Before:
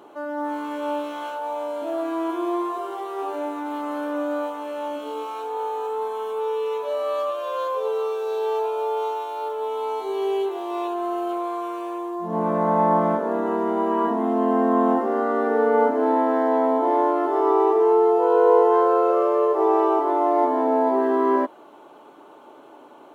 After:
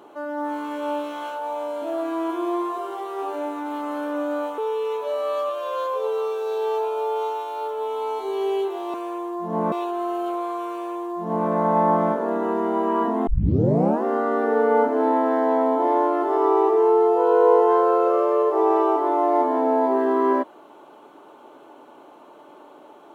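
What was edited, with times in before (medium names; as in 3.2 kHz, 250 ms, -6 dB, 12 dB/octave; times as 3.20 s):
4.58–6.39 s: delete
11.74–12.52 s: copy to 10.75 s
14.30 s: tape start 0.77 s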